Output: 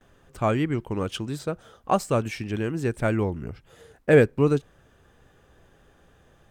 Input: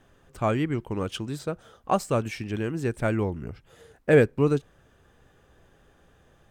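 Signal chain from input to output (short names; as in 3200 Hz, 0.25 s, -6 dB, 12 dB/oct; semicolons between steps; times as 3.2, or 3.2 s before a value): gate with hold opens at -52 dBFS; gain +1.5 dB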